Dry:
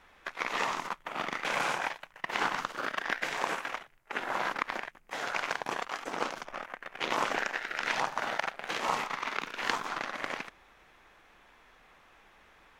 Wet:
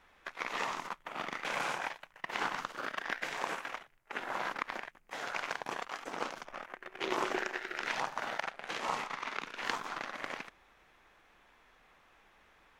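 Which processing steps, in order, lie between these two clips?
0:06.69–0:07.86: parametric band 370 Hz +14.5 dB 0.25 octaves
0:08.42–0:09.65: low-pass filter 12,000 Hz 12 dB per octave
level −4.5 dB

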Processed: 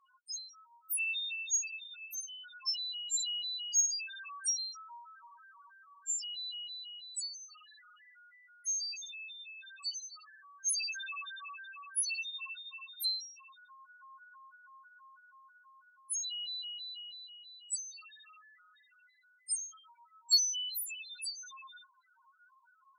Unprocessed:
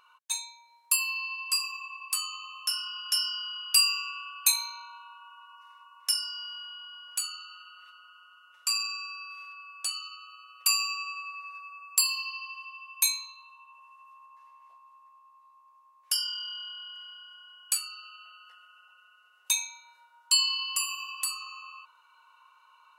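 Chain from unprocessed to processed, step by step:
pitch shifter gated in a rhythm +5.5 semitones, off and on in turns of 163 ms
spectral peaks only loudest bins 1
harmonic generator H 3 −24 dB, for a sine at −23 dBFS
level +6 dB

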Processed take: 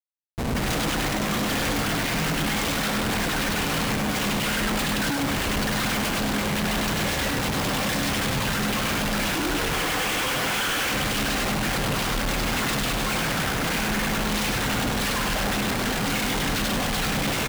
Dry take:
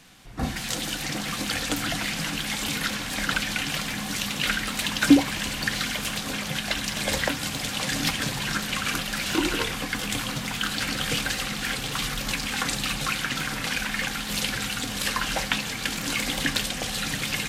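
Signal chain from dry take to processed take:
gain on a spectral selection 0:09.73–0:10.93, 290–3,500 Hz +12 dB
comparator with hysteresis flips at −30.5 dBFS
on a send: single-tap delay 100 ms −4 dB

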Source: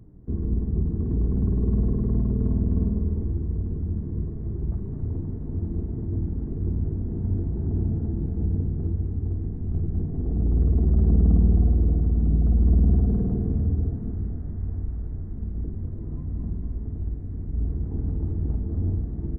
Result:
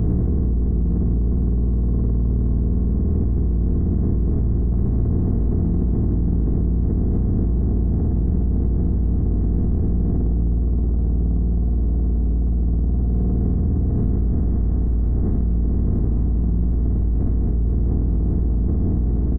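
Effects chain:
compressor on every frequency bin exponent 0.4
double-tracking delay 17 ms −7 dB
envelope flattener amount 100%
level −7.5 dB

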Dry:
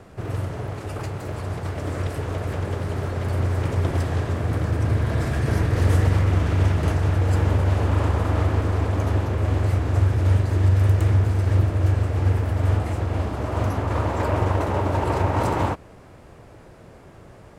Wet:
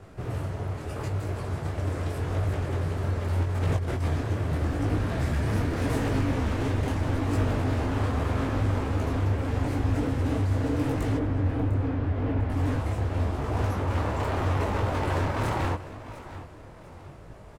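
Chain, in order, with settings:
low-shelf EQ 94 Hz +6.5 dB
mains-hum notches 60/120 Hz
0:03.42–0:04.08: compressor whose output falls as the input rises −21 dBFS, ratio −0.5
wave folding −17.5 dBFS
0:11.17–0:12.50: high-frequency loss of the air 290 metres
on a send: repeating echo 700 ms, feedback 41%, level −15.5 dB
on the sum: micro pitch shift up and down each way 28 cents

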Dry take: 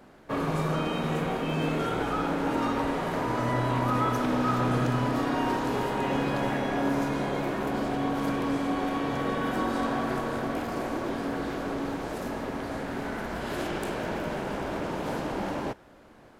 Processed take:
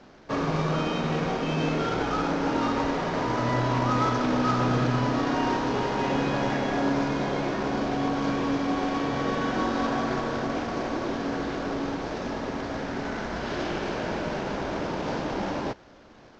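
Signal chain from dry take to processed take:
variable-slope delta modulation 32 kbit/s
level +2 dB

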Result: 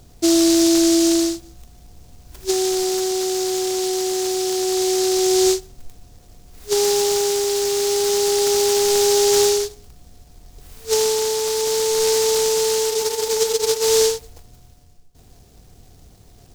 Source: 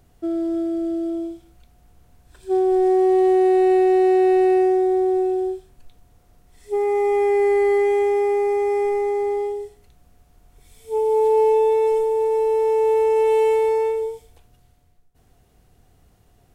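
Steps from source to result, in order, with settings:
compressor whose output falls as the input rises −23 dBFS, ratio −1
frozen spectrum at 0:12.93, 0.89 s
short delay modulated by noise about 5,500 Hz, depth 0.18 ms
level +4.5 dB

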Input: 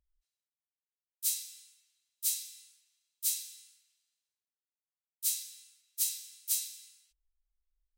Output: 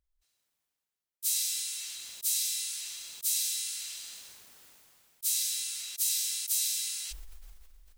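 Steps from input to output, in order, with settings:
level that may fall only so fast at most 21 dB per second

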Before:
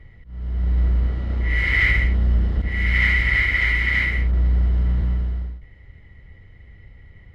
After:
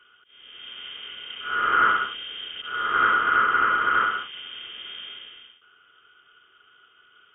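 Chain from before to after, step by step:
high-pass filter 220 Hz 24 dB per octave
voice inversion scrambler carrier 3,400 Hz

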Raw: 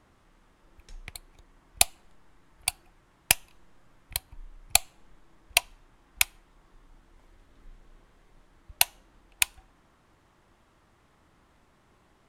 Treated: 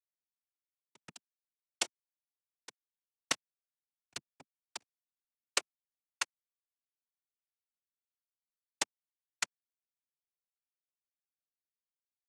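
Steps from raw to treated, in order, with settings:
gate pattern "xx.xxxx." 175 BPM −12 dB
bit reduction 6 bits
cochlear-implant simulation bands 4
level −8.5 dB

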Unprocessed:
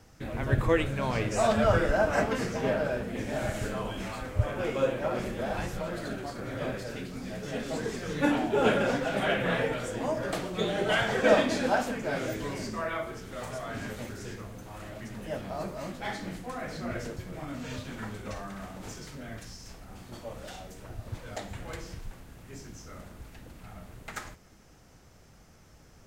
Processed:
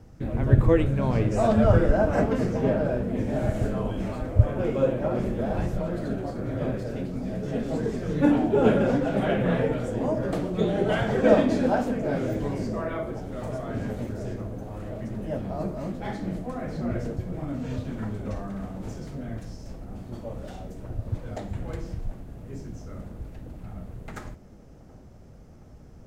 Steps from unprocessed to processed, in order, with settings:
tilt shelving filter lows +8 dB, about 760 Hz
on a send: delay with a band-pass on its return 722 ms, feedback 78%, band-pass 460 Hz, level −17 dB
on the sum: level +1 dB

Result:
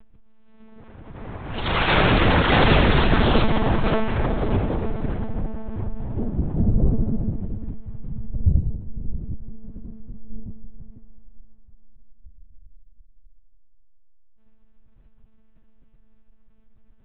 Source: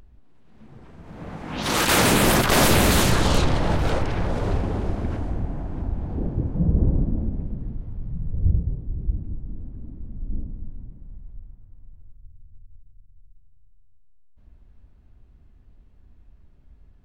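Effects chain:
one-pitch LPC vocoder at 8 kHz 220 Hz
level +1.5 dB

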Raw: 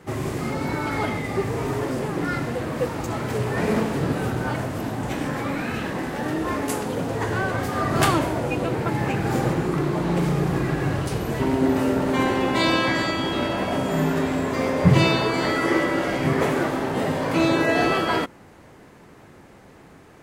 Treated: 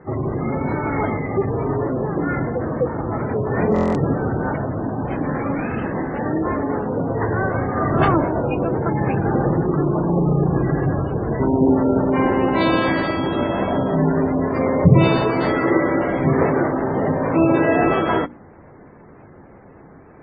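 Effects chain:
low-pass filter 1,300 Hz 6 dB per octave
gate on every frequency bin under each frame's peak −25 dB strong
mains-hum notches 60/120/180/240/300 Hz
buffer that repeats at 0:03.74, samples 1,024, times 8
level +5 dB
AAC 24 kbit/s 24,000 Hz

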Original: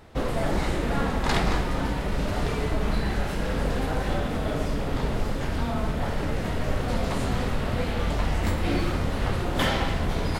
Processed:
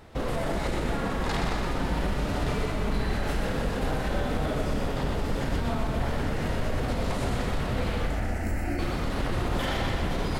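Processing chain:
brickwall limiter −20.5 dBFS, peak gain reduction 9.5 dB
0:08.05–0:08.79: phaser with its sweep stopped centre 710 Hz, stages 8
echo with a time of its own for lows and highs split 470 Hz, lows 491 ms, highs 124 ms, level −5 dB

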